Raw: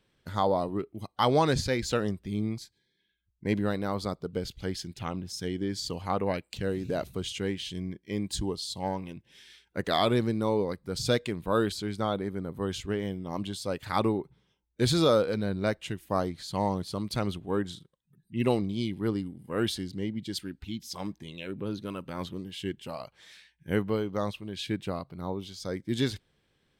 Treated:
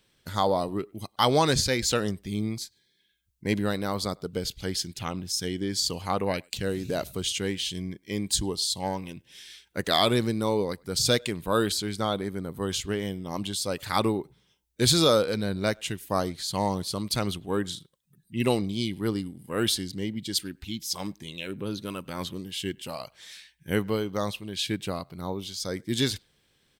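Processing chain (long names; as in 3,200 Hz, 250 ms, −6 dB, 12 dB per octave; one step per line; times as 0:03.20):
high-shelf EQ 3,300 Hz +11.5 dB
far-end echo of a speakerphone 100 ms, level −28 dB
level +1 dB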